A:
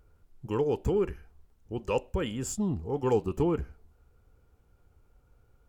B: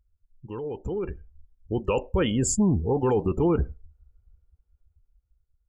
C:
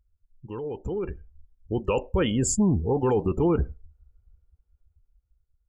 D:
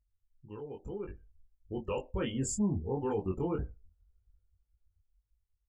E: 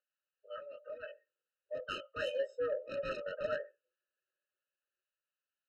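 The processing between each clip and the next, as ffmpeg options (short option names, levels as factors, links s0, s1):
-af "afftdn=nr=27:nf=-44,alimiter=level_in=1.19:limit=0.0631:level=0:latency=1:release=14,volume=0.841,dynaudnorm=f=210:g=13:m=4.47,volume=0.75"
-af anull
-af "flanger=delay=19.5:depth=2.7:speed=1.9,volume=0.447"
-af "highpass=f=290:t=q:w=0.5412,highpass=f=290:t=q:w=1.307,lowpass=f=3200:t=q:w=0.5176,lowpass=f=3200:t=q:w=0.7071,lowpass=f=3200:t=q:w=1.932,afreqshift=280,asoftclip=type=tanh:threshold=0.0188,afftfilt=real='re*eq(mod(floor(b*sr/1024/620),2),0)':imag='im*eq(mod(floor(b*sr/1024/620),2),0)':win_size=1024:overlap=0.75,volume=2.82"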